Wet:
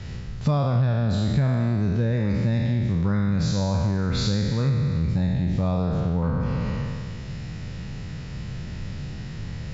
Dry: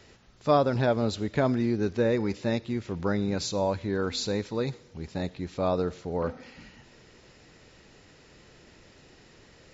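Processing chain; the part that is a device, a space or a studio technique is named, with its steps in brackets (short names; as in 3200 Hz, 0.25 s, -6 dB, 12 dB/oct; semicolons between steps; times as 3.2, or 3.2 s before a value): spectral trails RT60 1.79 s; 6–6.41 LPF 5500 Hz 12 dB/oct; jukebox (LPF 6600 Hz 12 dB/oct; resonant low shelf 230 Hz +14 dB, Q 1.5; compressor 5:1, threshold -29 dBFS, peak gain reduction 18.5 dB); gain +8 dB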